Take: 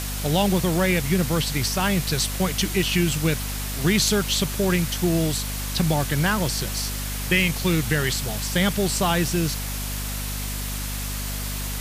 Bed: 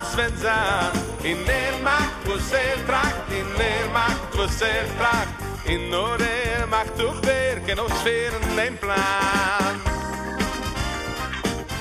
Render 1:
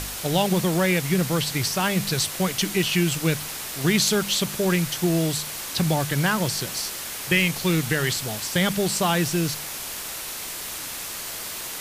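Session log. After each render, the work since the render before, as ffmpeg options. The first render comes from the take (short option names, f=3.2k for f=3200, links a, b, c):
-af "bandreject=f=50:t=h:w=4,bandreject=f=100:t=h:w=4,bandreject=f=150:t=h:w=4,bandreject=f=200:t=h:w=4,bandreject=f=250:t=h:w=4"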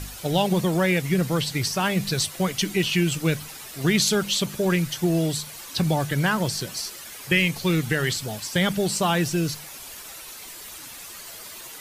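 -af "afftdn=nr=10:nf=-34"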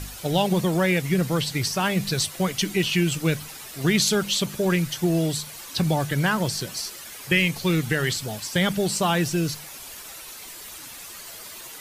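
-af anull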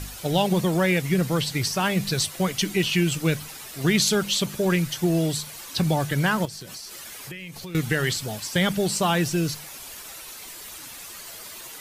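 -filter_complex "[0:a]asettb=1/sr,asplit=3[a][b][c];[a]atrim=end=6.454[d];[b]atrim=start=6.45:end=7.75,asetpts=PTS-STARTPTS,afade=t=in:d=0.004:c=qsin,afade=t=out:st=1.296:d=0.004:c=qsin,acompressor=threshold=-34dB:ratio=10:attack=3.2:release=140:knee=1:detection=peak[e];[c]atrim=start=7.746[f];[d][e]acrossfade=d=0.004:c1=hsin:c2=qsin[g];[g][f]acrossfade=d=0.004:c1=qsin:c2=hsin"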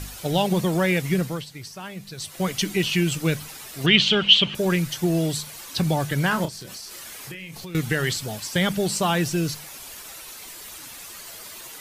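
-filter_complex "[0:a]asettb=1/sr,asplit=3[a][b][c];[a]atrim=end=3.864[d];[b]atrim=start=3.86:end=4.55,asetpts=PTS-STARTPTS,afade=t=in:d=0.004:c=qsin,afade=t=out:st=0.686:d=0.004:c=qsin,lowpass=f=3k:t=q:w=8.4[e];[c]atrim=start=4.546[f];[d][e]acrossfade=d=0.004:c1=hsin:c2=qsin[g];[g][f]acrossfade=d=0.004:c1=qsin:c2=hsin,asettb=1/sr,asplit=3[h][i][j];[h]atrim=end=6.284[k];[i]atrim=start=6.28:end=7.63,asetpts=PTS-STARTPTS,afade=t=in:d=0.004:c=qsin,afade=t=out:st=1.346:d=0.004:c=qsin,asplit=2[l][m];[m]adelay=31,volume=-8.5dB[n];[l][n]amix=inputs=2:normalize=0,atrim=end_sample=59535[o];[j]atrim=start=7.626[p];[k][o]acrossfade=d=0.004:c1=hsin:c2=qsin[q];[q][p]acrossfade=d=0.004:c1=qsin:c2=hsin,asplit=3[r][s][t];[r]atrim=end=1.46,asetpts=PTS-STARTPTS,afade=t=out:st=1.15:d=0.31:silence=0.223872[u];[s]atrim=start=1.46:end=2.17,asetpts=PTS-STARTPTS,volume=-13dB[v];[t]atrim=start=2.17,asetpts=PTS-STARTPTS,afade=t=in:d=0.31:silence=0.223872[w];[u][v][w]concat=n=3:v=0:a=1"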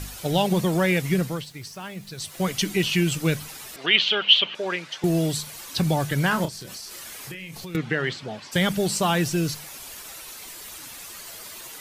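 -filter_complex "[0:a]asettb=1/sr,asplit=3[a][b][c];[a]atrim=end=1.334[d];[b]atrim=start=1.33:end=2.5,asetpts=PTS-STARTPTS,afade=t=in:d=0.004:c=qsin,afade=t=out:st=1.166:d=0.004:c=qsin,aeval=exprs='val(0)*gte(abs(val(0)),0.00299)':c=same[e];[c]atrim=start=2.496[f];[d][e]acrossfade=d=0.004:c1=hsin:c2=qsin[g];[g][f]acrossfade=d=0.004:c1=qsin:c2=hsin,asettb=1/sr,asplit=3[h][i][j];[h]atrim=end=3.764[k];[i]atrim=start=3.76:end=5.04,asetpts=PTS-STARTPTS,afade=t=in:d=0.004:c=qsin,afade=t=out:st=1.276:d=0.004:c=qsin,highpass=500,lowpass=4k[l];[j]atrim=start=5.036[m];[k][l]acrossfade=d=0.004:c1=hsin:c2=qsin[n];[n][m]acrossfade=d=0.004:c1=qsin:c2=hsin,asplit=3[o][p][q];[o]afade=t=out:st=7.75:d=0.02[r];[p]highpass=170,lowpass=3k,afade=t=in:st=7.75:d=0.02,afade=t=out:st=8.51:d=0.02[s];[q]afade=t=in:st=8.51:d=0.02[t];[r][s][t]amix=inputs=3:normalize=0"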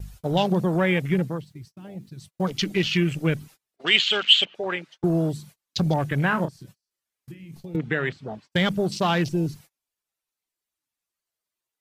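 -af "afwtdn=0.0251,agate=range=-32dB:threshold=-45dB:ratio=16:detection=peak"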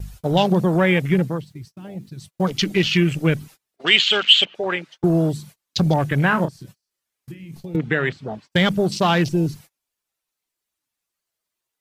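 -af "volume=4.5dB,alimiter=limit=-1dB:level=0:latency=1"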